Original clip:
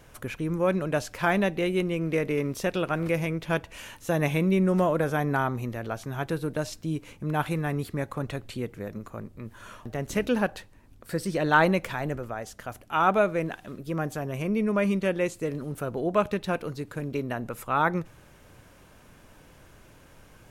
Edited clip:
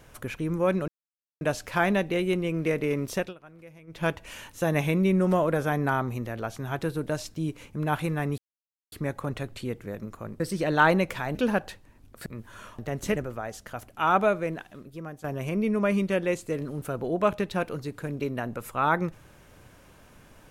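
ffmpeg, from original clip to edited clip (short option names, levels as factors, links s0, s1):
-filter_complex "[0:a]asplit=10[s0][s1][s2][s3][s4][s5][s6][s7][s8][s9];[s0]atrim=end=0.88,asetpts=PTS-STARTPTS,afade=t=out:st=0.876:d=0.004:c=hsin,apad=pad_dur=0.53[s10];[s1]atrim=start=0.88:end=2.81,asetpts=PTS-STARTPTS,afade=t=in:d=0.004:c=hsin,afade=t=out:st=1.77:d=0.16:silence=0.0794328[s11];[s2]atrim=start=2.81:end=3.34,asetpts=PTS-STARTPTS,volume=0.0794[s12];[s3]atrim=start=3.34:end=7.85,asetpts=PTS-STARTPTS,afade=t=in:d=0.16:silence=0.0794328,afade=t=out:st=4.506:d=0.004:c=hsin,apad=pad_dur=0.54[s13];[s4]atrim=start=7.85:end=9.332,asetpts=PTS-STARTPTS,afade=t=in:d=0.004:c=hsin[s14];[s5]atrim=start=11.138:end=12.092[s15];[s6]atrim=start=10.228:end=11.142[s16];[s7]atrim=start=9.328:end=10.232[s17];[s8]atrim=start=12.088:end=14.17,asetpts=PTS-STARTPTS,afade=t=out:st=1.002:d=1.08:silence=0.211349[s18];[s9]atrim=start=14.17,asetpts=PTS-STARTPTS,afade=t=in:d=0.004:c=hsin:silence=0.211349[s19];[s10][s11][s12][s13][s14]concat=n=5:v=0:a=1[s20];[s20][s15]acrossfade=d=0.004:c1=hsin:c2=hsin[s21];[s21][s16]acrossfade=d=0.004:c1=hsin:c2=hsin[s22];[s22][s17]acrossfade=d=0.004:c1=hsin:c2=hsin[s23];[s18][s19]concat=n=2:v=0:a=1[s24];[s23][s24]acrossfade=d=0.004:c1=hsin:c2=hsin"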